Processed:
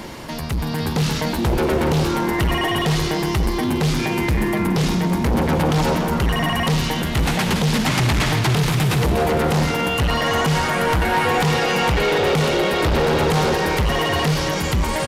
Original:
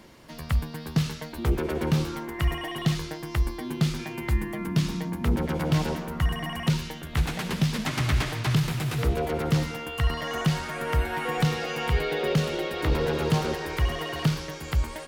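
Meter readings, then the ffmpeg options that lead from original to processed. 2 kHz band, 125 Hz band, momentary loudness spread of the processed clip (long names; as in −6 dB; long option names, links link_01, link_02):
+10.5 dB, +6.0 dB, 3 LU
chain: -filter_complex "[0:a]asplit=2[link_01][link_02];[link_02]aeval=exprs='0.0562*(abs(mod(val(0)/0.0562+3,4)-2)-1)':channel_layout=same,volume=-6dB[link_03];[link_01][link_03]amix=inputs=2:normalize=0,aeval=exprs='0.224*(cos(1*acos(clip(val(0)/0.224,-1,1)))-cos(1*PI/2))+0.1*(cos(5*acos(clip(val(0)/0.224,-1,1)))-cos(5*PI/2))':channel_layout=same,areverse,acompressor=threshold=-25dB:ratio=6,areverse,alimiter=limit=-24dB:level=0:latency=1:release=19,equalizer=frequency=860:width_type=o:width=0.31:gain=4,asplit=7[link_04][link_05][link_06][link_07][link_08][link_09][link_10];[link_05]adelay=285,afreqshift=34,volume=-12dB[link_11];[link_06]adelay=570,afreqshift=68,volume=-16.9dB[link_12];[link_07]adelay=855,afreqshift=102,volume=-21.8dB[link_13];[link_08]adelay=1140,afreqshift=136,volume=-26.6dB[link_14];[link_09]adelay=1425,afreqshift=170,volume=-31.5dB[link_15];[link_10]adelay=1710,afreqshift=204,volume=-36.4dB[link_16];[link_04][link_11][link_12][link_13][link_14][link_15][link_16]amix=inputs=7:normalize=0,dynaudnorm=framelen=150:gausssize=9:maxgain=5dB,aresample=32000,aresample=44100,volume=3.5dB"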